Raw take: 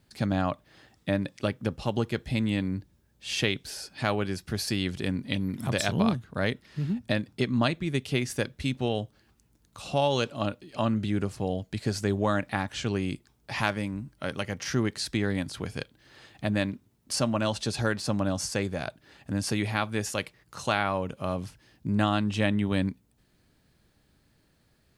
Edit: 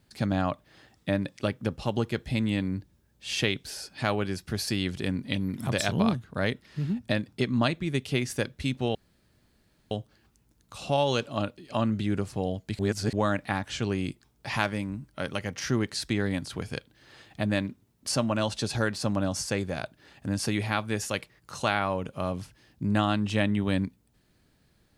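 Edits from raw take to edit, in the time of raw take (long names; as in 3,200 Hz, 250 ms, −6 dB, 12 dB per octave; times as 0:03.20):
0:08.95: splice in room tone 0.96 s
0:11.83–0:12.17: reverse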